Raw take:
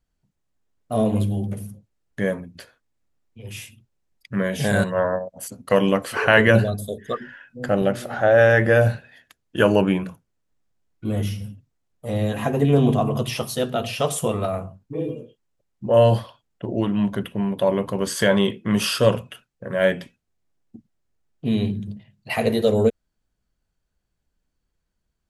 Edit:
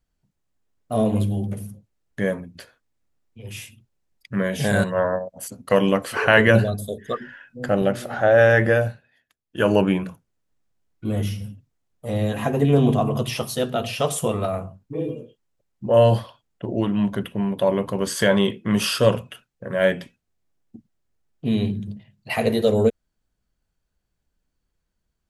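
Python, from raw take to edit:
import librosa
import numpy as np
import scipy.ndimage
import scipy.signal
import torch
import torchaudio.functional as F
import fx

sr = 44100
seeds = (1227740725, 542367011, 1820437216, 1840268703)

y = fx.edit(x, sr, fx.fade_down_up(start_s=8.67, length_s=1.06, db=-13.5, fade_s=0.27), tone=tone)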